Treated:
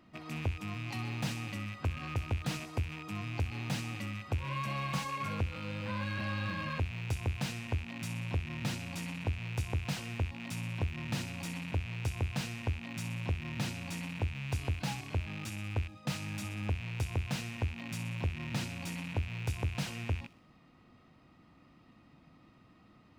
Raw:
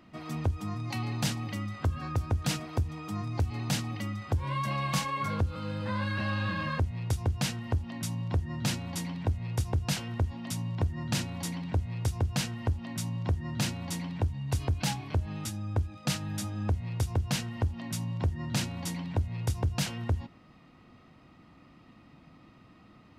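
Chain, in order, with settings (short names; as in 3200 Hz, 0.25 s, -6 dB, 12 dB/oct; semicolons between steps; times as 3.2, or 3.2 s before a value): rattling part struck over -40 dBFS, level -28 dBFS; thin delay 62 ms, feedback 56%, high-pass 4500 Hz, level -10.5 dB; slew limiter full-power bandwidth 84 Hz; gain -5 dB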